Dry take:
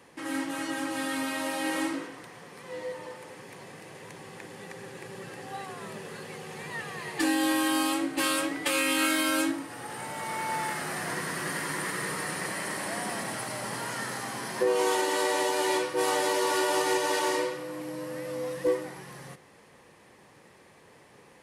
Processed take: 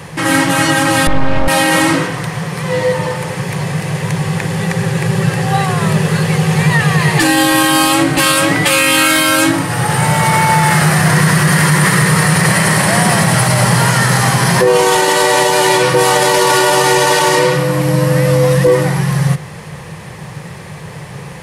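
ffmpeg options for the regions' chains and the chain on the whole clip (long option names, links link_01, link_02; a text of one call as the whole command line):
ffmpeg -i in.wav -filter_complex "[0:a]asettb=1/sr,asplit=3[link_01][link_02][link_03];[link_01]atrim=end=1.074[link_04];[link_02]atrim=start=1.07:end=1.48,asetpts=PTS-STARTPTS,afade=type=in:duration=0.004:curve=qsin,afade=type=out:start_time=0.406:duration=0.004:curve=qsin,tiltshelf=frequency=1300:gain=9.5,aeval=exprs='max(val(0),0)':channel_layout=same,lowpass=4800[link_05];[link_03]atrim=start=1.476[link_06];[link_04][link_05]acrossfade=duration=0.004:curve1=hsin:curve2=qsin[link_07];[link_07][link_06]acrossfade=duration=0.004:curve1=qsin:curve2=hsin,lowshelf=frequency=200:width_type=q:width=3:gain=8,alimiter=level_in=24dB:limit=-1dB:release=50:level=0:latency=1,volume=-1dB" out.wav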